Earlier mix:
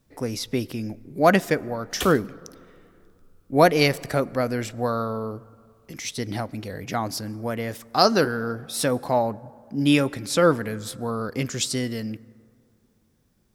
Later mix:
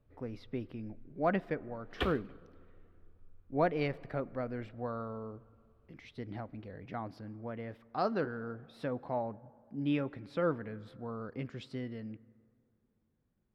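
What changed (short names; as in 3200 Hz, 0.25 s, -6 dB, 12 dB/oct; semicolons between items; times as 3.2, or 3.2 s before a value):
speech -12.0 dB; master: add air absorption 420 m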